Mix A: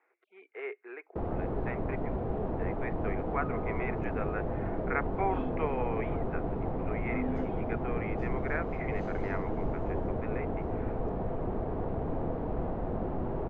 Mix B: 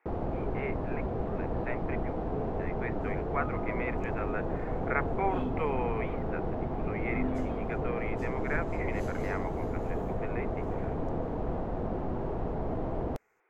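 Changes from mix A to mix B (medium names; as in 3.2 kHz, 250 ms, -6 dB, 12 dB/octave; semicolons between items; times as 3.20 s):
first sound: entry -1.10 s; master: remove distance through air 190 m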